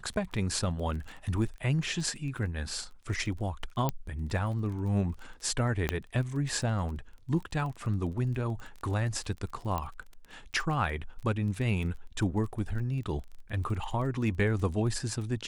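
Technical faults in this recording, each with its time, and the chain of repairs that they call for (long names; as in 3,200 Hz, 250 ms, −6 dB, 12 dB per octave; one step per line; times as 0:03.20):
surface crackle 20 per second −38 dBFS
0:03.89: click −15 dBFS
0:05.89: click −13 dBFS
0:09.78: click −19 dBFS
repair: click removal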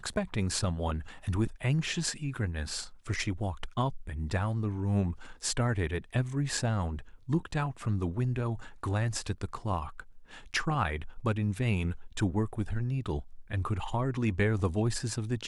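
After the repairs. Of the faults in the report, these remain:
0:09.78: click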